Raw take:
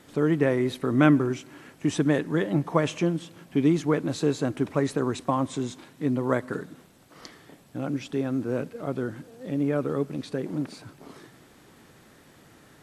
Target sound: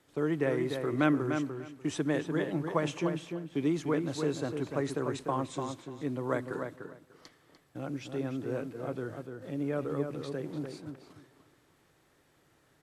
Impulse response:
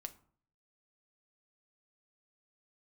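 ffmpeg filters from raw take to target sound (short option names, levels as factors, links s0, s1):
-filter_complex "[0:a]agate=range=0.447:threshold=0.00708:ratio=16:detection=peak,equalizer=f=220:w=3.7:g=-9,acrossover=split=150[s0][s1];[s0]alimiter=level_in=4.22:limit=0.0631:level=0:latency=1,volume=0.237[s2];[s2][s1]amix=inputs=2:normalize=0,asplit=2[s3][s4];[s4]adelay=296,lowpass=f=2900:p=1,volume=0.501,asplit=2[s5][s6];[s6]adelay=296,lowpass=f=2900:p=1,volume=0.18,asplit=2[s7][s8];[s8]adelay=296,lowpass=f=2900:p=1,volume=0.18[s9];[s3][s5][s7][s9]amix=inputs=4:normalize=0,volume=0.501"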